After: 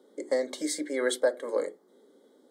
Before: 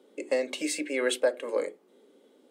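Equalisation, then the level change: Butterworth band-stop 2.6 kHz, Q 2; 0.0 dB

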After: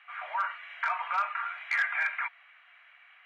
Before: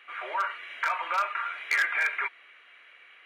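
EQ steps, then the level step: elliptic high-pass 710 Hz, stop band 70 dB; tilt EQ -1.5 dB/octave; treble shelf 5.1 kHz -11.5 dB; 0.0 dB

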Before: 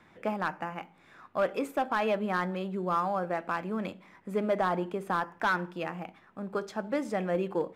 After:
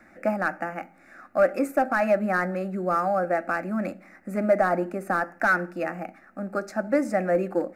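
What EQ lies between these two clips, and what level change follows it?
peaking EQ 510 Hz +4.5 dB 0.28 oct; static phaser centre 660 Hz, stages 8; +8.0 dB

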